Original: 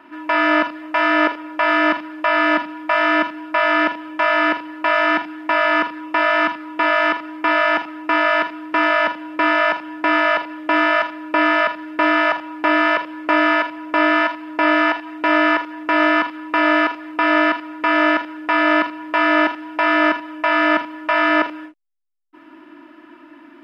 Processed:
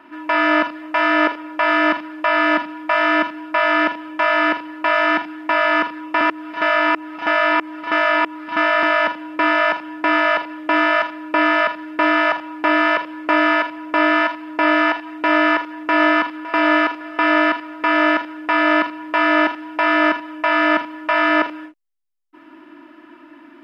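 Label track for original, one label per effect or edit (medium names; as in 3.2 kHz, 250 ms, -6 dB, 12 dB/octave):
6.210000	8.830000	reverse
15.360000	16.450000	echo throw 560 ms, feedback 45%, level -15 dB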